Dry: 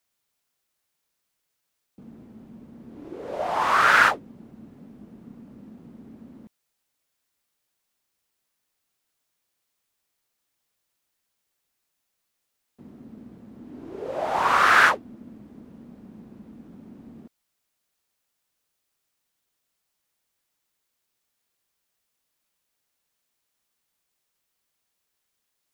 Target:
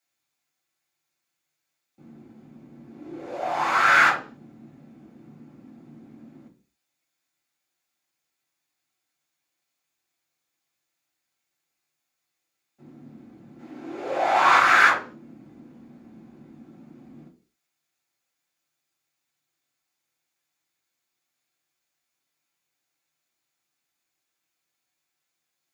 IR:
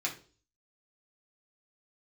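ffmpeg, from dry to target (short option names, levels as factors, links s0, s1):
-filter_complex "[0:a]asettb=1/sr,asplit=3[s0][s1][s2];[s0]atrim=end=13.594[s3];[s1]atrim=start=13.59:end=14.58,asetpts=PTS-STARTPTS,afade=t=in:d=0.004:c=qsin,afade=t=out:st=0.986:d=0.004:c=qsin,asplit=2[s4][s5];[s5]highpass=f=720:p=1,volume=5.01,asoftclip=type=tanh:threshold=0.473[s6];[s4][s6]amix=inputs=2:normalize=0,lowpass=f=6300:p=1,volume=0.501[s7];[s2]atrim=start=14.576[s8];[s3][s7]acrossfade=d=0.004:c1=hsin:c2=qsin[s9];[s9][s8]acrossfade=d=0.004:c1=qsin:c2=hsin[s10];[1:a]atrim=start_sample=2205,afade=t=out:st=0.34:d=0.01,atrim=end_sample=15435[s11];[s10][s11]afir=irnorm=-1:irlink=0,volume=0.596"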